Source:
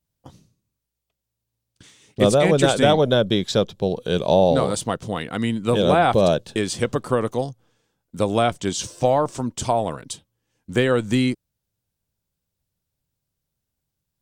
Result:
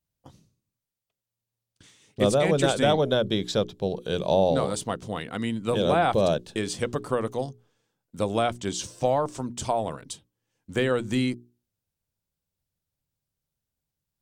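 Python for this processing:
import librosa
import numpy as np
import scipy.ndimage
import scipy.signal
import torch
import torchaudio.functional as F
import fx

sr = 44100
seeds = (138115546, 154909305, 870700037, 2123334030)

y = fx.hum_notches(x, sr, base_hz=60, count=7)
y = y * librosa.db_to_amplitude(-5.0)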